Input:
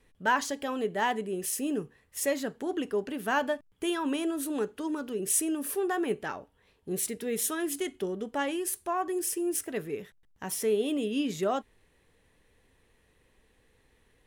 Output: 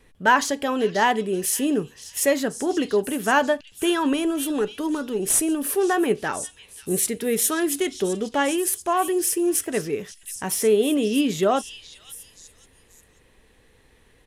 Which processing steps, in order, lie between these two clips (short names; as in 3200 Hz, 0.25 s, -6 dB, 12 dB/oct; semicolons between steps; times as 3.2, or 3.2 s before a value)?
4.13–5.65 tube stage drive 18 dB, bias 0.35; downsampling 32000 Hz; delay with a stepping band-pass 0.534 s, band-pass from 4000 Hz, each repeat 0.7 oct, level -6.5 dB; gain +8.5 dB